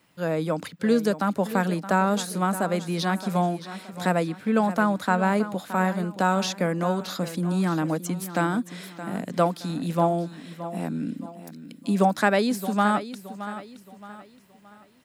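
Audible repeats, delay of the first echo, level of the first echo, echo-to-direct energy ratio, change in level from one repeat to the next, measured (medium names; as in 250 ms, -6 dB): 3, 621 ms, -13.0 dB, -12.5 dB, -8.5 dB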